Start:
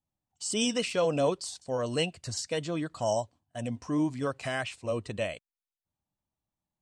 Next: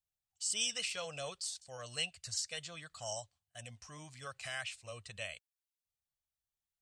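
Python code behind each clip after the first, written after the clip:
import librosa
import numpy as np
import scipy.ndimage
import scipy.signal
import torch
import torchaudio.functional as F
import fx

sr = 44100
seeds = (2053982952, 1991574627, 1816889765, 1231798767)

y = fx.tone_stack(x, sr, knobs='10-0-10')
y = fx.notch(y, sr, hz=970.0, q=6.8)
y = y * librosa.db_to_amplitude(-1.0)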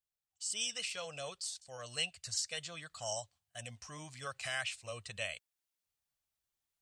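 y = fx.low_shelf(x, sr, hz=110.0, db=-4.0)
y = fx.rider(y, sr, range_db=4, speed_s=2.0)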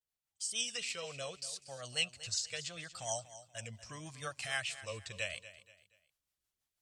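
y = fx.rotary(x, sr, hz=6.3)
y = fx.vibrato(y, sr, rate_hz=0.75, depth_cents=94.0)
y = fx.echo_feedback(y, sr, ms=238, feedback_pct=34, wet_db=-15)
y = y * librosa.db_to_amplitude(3.0)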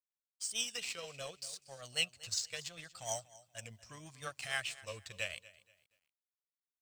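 y = fx.law_mismatch(x, sr, coded='A')
y = y * librosa.db_to_amplitude(1.5)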